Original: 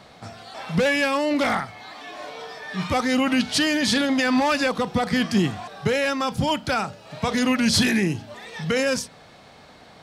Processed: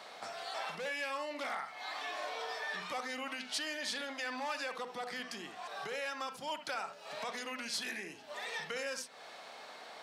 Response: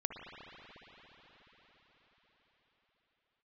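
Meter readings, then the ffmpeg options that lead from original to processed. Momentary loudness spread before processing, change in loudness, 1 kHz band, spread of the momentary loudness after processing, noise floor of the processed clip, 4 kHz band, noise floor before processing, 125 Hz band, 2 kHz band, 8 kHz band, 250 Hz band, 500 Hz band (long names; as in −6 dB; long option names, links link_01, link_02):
16 LU, −17.0 dB, −13.0 dB, 7 LU, −52 dBFS, −14.0 dB, −48 dBFS, −33.0 dB, −13.5 dB, −14.5 dB, −27.5 dB, −17.0 dB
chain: -filter_complex "[0:a]acompressor=threshold=-35dB:ratio=5,highpass=550[link_01];[1:a]atrim=start_sample=2205,atrim=end_sample=3528[link_02];[link_01][link_02]afir=irnorm=-1:irlink=0,volume=1dB"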